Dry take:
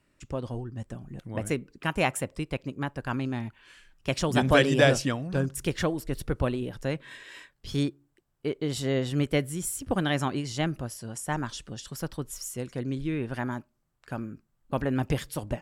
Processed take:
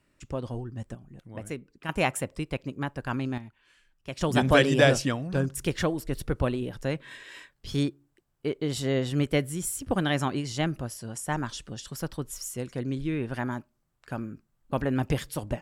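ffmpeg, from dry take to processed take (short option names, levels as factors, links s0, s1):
-af "asetnsamples=n=441:p=0,asendcmd='0.95 volume volume -7dB;1.89 volume volume 0dB;3.38 volume volume -9dB;4.21 volume volume 0.5dB',volume=1"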